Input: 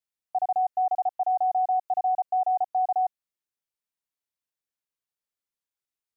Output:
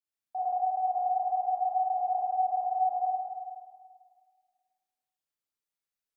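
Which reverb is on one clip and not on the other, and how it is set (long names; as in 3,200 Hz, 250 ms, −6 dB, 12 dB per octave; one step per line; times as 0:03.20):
four-comb reverb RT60 1.8 s, combs from 28 ms, DRR −7.5 dB
level −9.5 dB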